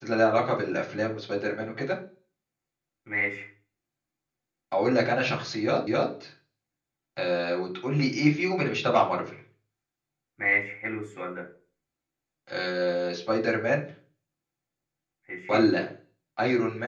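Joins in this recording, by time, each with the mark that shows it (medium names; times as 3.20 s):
5.87 s: repeat of the last 0.26 s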